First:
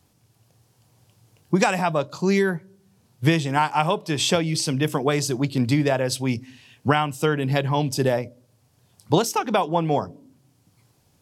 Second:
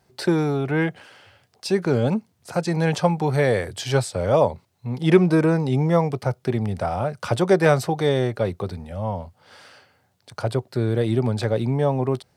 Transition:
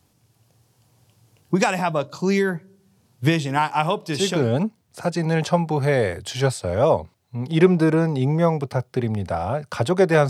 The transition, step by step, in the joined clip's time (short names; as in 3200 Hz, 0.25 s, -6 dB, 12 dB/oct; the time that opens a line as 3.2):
first
4.22 switch to second from 1.73 s, crossfade 0.62 s equal-power